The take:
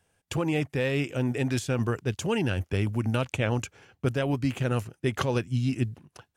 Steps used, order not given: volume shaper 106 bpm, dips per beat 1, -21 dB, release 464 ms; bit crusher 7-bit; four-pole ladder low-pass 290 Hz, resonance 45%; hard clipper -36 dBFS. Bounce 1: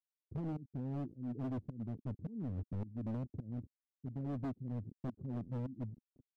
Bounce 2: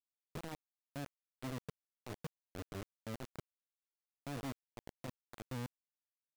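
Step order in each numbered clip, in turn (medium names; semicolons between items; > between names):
bit crusher > volume shaper > four-pole ladder low-pass > hard clipper; hard clipper > volume shaper > four-pole ladder low-pass > bit crusher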